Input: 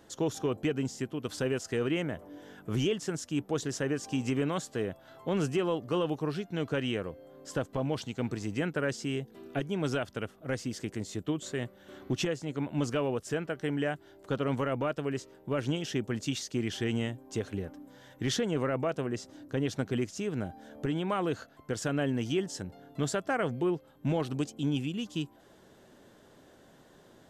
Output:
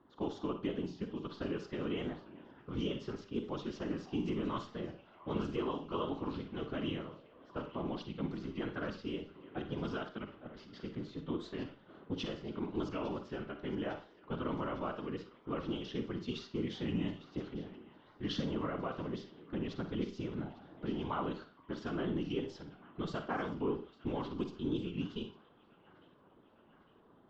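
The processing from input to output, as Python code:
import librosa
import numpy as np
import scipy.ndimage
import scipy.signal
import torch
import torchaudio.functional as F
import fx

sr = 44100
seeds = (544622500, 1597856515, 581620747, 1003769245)

y = fx.cabinet(x, sr, low_hz=190.0, low_slope=12, high_hz=4200.0, hz=(230.0, 460.0, 670.0, 1100.0, 1700.0, 2400.0), db=(4, -8, -6, 4, -8, -8))
y = fx.over_compress(y, sr, threshold_db=-45.0, ratio=-1.0, at=(10.32, 10.81))
y = fx.whisperise(y, sr, seeds[0])
y = fx.echo_wet_highpass(y, sr, ms=855, feedback_pct=67, hz=1500.0, wet_db=-15.5)
y = fx.rev_schroeder(y, sr, rt60_s=0.36, comb_ms=38, drr_db=7.0)
y = fx.env_lowpass(y, sr, base_hz=1700.0, full_db=-27.0)
y = fx.record_warp(y, sr, rpm=45.0, depth_cents=100.0)
y = y * librosa.db_to_amplitude(-5.0)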